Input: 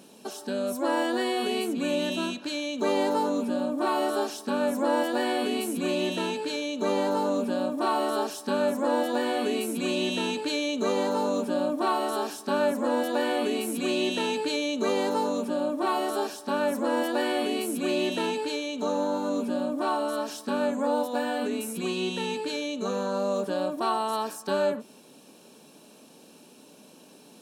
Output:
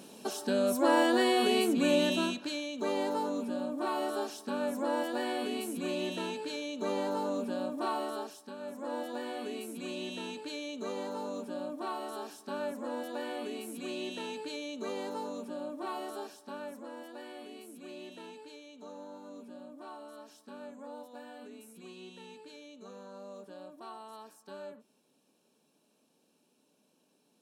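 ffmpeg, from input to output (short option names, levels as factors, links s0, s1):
-af "volume=2.66,afade=t=out:st=1.96:d=0.73:silence=0.398107,afade=t=out:st=7.86:d=0.7:silence=0.251189,afade=t=in:st=8.56:d=0.39:silence=0.421697,afade=t=out:st=16.04:d=0.91:silence=0.398107"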